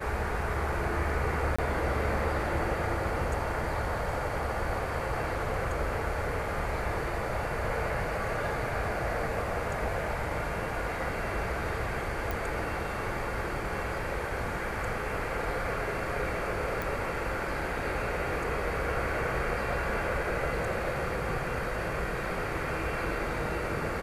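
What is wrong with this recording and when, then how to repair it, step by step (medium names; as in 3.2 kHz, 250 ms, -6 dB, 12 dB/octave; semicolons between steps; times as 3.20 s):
1.56–1.58 s: dropout 25 ms
12.31 s: pop
16.82 s: pop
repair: de-click; interpolate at 1.56 s, 25 ms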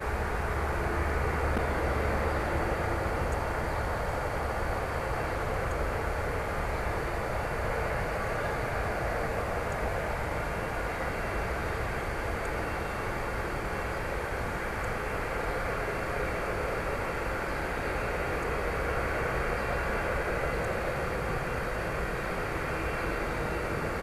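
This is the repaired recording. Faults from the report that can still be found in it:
nothing left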